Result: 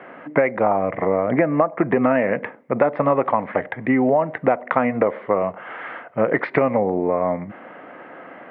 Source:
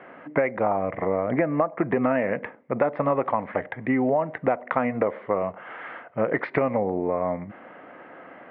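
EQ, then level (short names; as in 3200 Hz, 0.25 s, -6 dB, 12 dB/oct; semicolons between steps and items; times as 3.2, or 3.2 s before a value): HPF 98 Hz; +5.0 dB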